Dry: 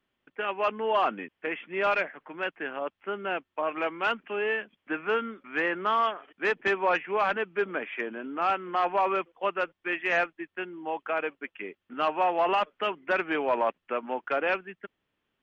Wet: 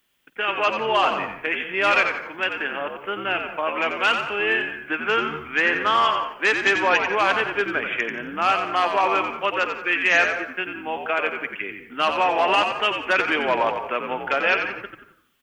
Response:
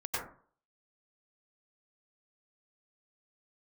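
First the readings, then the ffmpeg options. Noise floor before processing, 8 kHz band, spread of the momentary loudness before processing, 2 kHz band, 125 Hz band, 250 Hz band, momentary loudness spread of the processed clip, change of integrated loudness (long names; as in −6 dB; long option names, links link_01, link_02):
−82 dBFS, can't be measured, 10 LU, +9.5 dB, +7.5 dB, +4.5 dB, 9 LU, +7.5 dB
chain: -filter_complex "[0:a]asplit=5[link_01][link_02][link_03][link_04][link_05];[link_02]adelay=89,afreqshift=-76,volume=-6.5dB[link_06];[link_03]adelay=178,afreqshift=-152,volume=-16.1dB[link_07];[link_04]adelay=267,afreqshift=-228,volume=-25.8dB[link_08];[link_05]adelay=356,afreqshift=-304,volume=-35.4dB[link_09];[link_01][link_06][link_07][link_08][link_09]amix=inputs=5:normalize=0,asplit=2[link_10][link_11];[1:a]atrim=start_sample=2205,adelay=50[link_12];[link_11][link_12]afir=irnorm=-1:irlink=0,volume=-17.5dB[link_13];[link_10][link_13]amix=inputs=2:normalize=0,crystalizer=i=7:c=0,volume=1.5dB"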